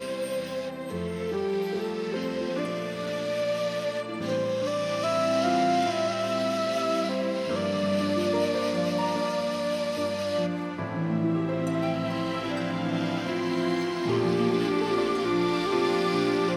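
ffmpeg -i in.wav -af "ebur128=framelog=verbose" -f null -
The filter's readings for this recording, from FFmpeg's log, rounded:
Integrated loudness:
  I:         -27.4 LUFS
  Threshold: -37.4 LUFS
Loudness range:
  LRA:         3.7 LU
  Threshold: -47.5 LUFS
  LRA low:   -29.8 LUFS
  LRA high:  -26.0 LUFS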